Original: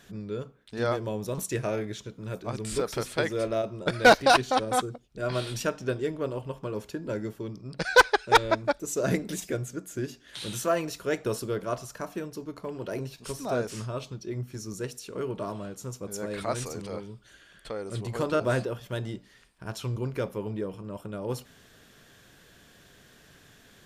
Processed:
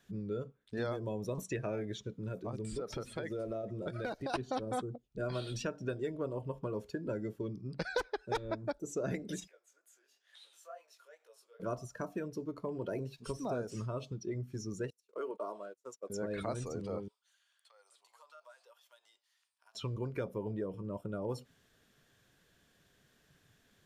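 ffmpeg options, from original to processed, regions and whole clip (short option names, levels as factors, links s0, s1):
-filter_complex "[0:a]asettb=1/sr,asplit=3[s0][s1][s2];[s0]atrim=end=2.284[s3];[s1]atrim=start=2.28:end=4.34,asetpts=PTS-STARTPTS,afade=t=in:d=0.004:c=qsin,afade=t=out:st=2.056:d=0.004:c=qsin,aecho=1:1:423:0.075,atrim=end_sample=90846,acompressor=threshold=0.02:ratio=4:attack=3.2:release=140:knee=1:detection=peak[s4];[s2]atrim=start=4.336[s5];[s3][s4]acrossfade=d=0.004:c1=hsin:c2=qsin[s6];[s6][s5]acrossfade=d=0.004:c1=qsin:c2=hsin,asettb=1/sr,asplit=3[s7][s8][s9];[s7]atrim=end=9.484[s10];[s8]atrim=start=9.48:end=11.6,asetpts=PTS-STARTPTS,afade=t=in:d=0.004:c=qsin,afade=t=out:st=2.116:d=0.004:c=qsin,acompressor=threshold=0.00631:ratio=3:attack=3.2:release=140:knee=1:detection=peak,flanger=delay=17.5:depth=7.4:speed=2.2,highpass=f=600:w=0.5412,highpass=f=600:w=1.3066[s11];[s9]atrim=start=11.596[s12];[s10][s11]acrossfade=d=0.004:c1=hsin:c2=qsin[s13];[s13][s12]acrossfade=d=0.004:c1=qsin:c2=hsin,asettb=1/sr,asplit=3[s14][s15][s16];[s14]atrim=end=14.904[s17];[s15]atrim=start=14.9:end=16.1,asetpts=PTS-STARTPTS,afade=t=in:d=0.004:c=qsin,afade=t=out:st=1.196:d=0.004:c=qsin,agate=range=0.0447:threshold=0.0112:ratio=16:release=100:detection=peak,highpass=520[s18];[s16]atrim=start=16.096[s19];[s17][s18]acrossfade=d=0.004:c1=hsin:c2=qsin[s20];[s20][s19]acrossfade=d=0.004:c1=qsin:c2=hsin,asettb=1/sr,asplit=3[s21][s22][s23];[s21]atrim=end=17.084[s24];[s22]atrim=start=17.08:end=19.75,asetpts=PTS-STARTPTS,afade=t=in:d=0.004:c=qsin,afade=t=out:st=2.666:d=0.004:c=qsin,highpass=f=890:w=0.5412,highpass=f=890:w=1.3066,equalizer=f=1700:t=o:w=1.4:g=-8.5,acompressor=threshold=0.00355:ratio=5:attack=3.2:release=140:knee=1:detection=peak[s25];[s23]atrim=start=19.746[s26];[s24][s25]acrossfade=d=0.004:c1=hsin:c2=qsin[s27];[s27][s26]acrossfade=d=0.004:c1=qsin:c2=hsin,afftdn=nr=14:nf=-41,acrossover=split=530|5300[s28][s29][s30];[s28]acompressor=threshold=0.0141:ratio=4[s31];[s29]acompressor=threshold=0.00794:ratio=4[s32];[s30]acompressor=threshold=0.00158:ratio=4[s33];[s31][s32][s33]amix=inputs=3:normalize=0"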